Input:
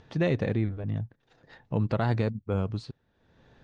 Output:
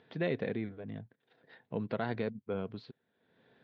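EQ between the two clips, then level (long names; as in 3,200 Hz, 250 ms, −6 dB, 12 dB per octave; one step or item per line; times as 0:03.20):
loudspeaker in its box 280–3,500 Hz, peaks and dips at 320 Hz −7 dB, 570 Hz −6 dB, 850 Hz −8 dB, 1,200 Hz −9 dB, 1,800 Hz −3 dB, 2,700 Hz −6 dB
0.0 dB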